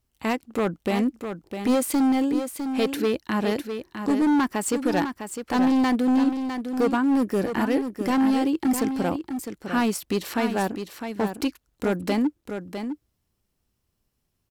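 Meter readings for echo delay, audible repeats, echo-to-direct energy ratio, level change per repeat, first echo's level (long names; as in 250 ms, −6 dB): 655 ms, 1, −8.0 dB, repeats not evenly spaced, −8.0 dB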